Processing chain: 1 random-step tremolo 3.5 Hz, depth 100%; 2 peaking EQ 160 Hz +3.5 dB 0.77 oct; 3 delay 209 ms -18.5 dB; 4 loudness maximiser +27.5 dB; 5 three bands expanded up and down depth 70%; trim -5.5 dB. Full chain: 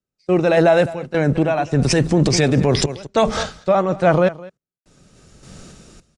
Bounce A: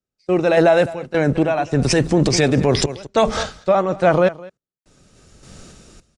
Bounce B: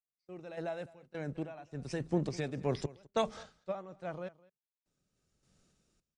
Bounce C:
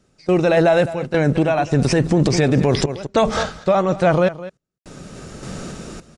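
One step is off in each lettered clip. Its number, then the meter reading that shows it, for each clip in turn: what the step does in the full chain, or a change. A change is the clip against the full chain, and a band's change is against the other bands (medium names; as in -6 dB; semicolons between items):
2, 125 Hz band -2.5 dB; 4, crest factor change +3.5 dB; 5, 8 kHz band -4.0 dB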